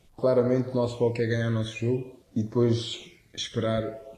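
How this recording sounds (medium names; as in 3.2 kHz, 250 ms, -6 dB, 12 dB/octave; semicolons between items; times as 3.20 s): phasing stages 12, 0.49 Hz, lowest notch 790–2800 Hz; a quantiser's noise floor 12-bit, dither none; Vorbis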